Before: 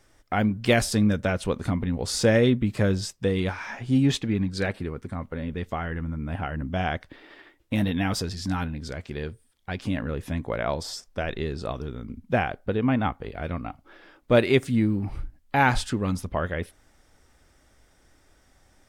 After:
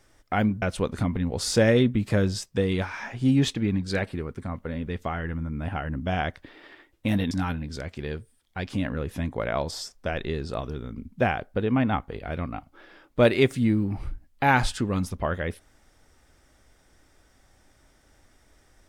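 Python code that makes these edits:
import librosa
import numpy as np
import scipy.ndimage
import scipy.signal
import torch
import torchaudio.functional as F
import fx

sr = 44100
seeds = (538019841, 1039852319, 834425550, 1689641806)

y = fx.edit(x, sr, fx.cut(start_s=0.62, length_s=0.67),
    fx.cut(start_s=7.98, length_s=0.45), tone=tone)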